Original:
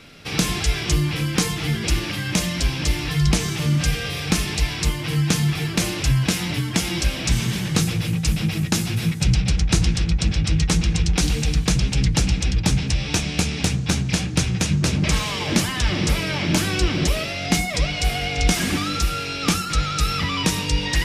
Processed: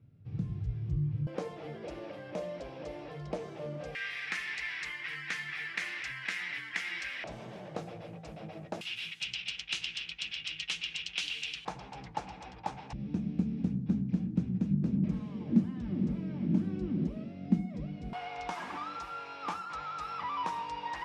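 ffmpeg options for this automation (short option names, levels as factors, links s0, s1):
-af "asetnsamples=n=441:p=0,asendcmd='1.27 bandpass f 570;3.95 bandpass f 1900;7.24 bandpass f 630;8.81 bandpass f 2900;11.65 bandpass f 850;12.93 bandpass f 220;18.13 bandpass f 950',bandpass=f=110:t=q:w=4.6:csg=0"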